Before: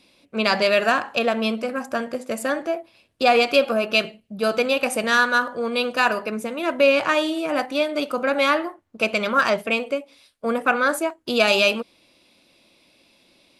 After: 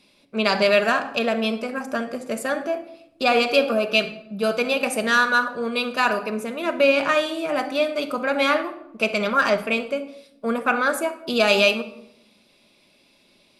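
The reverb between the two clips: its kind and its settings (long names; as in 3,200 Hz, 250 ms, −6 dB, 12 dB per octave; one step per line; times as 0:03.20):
rectangular room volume 2,300 cubic metres, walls furnished, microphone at 1.3 metres
level −1.5 dB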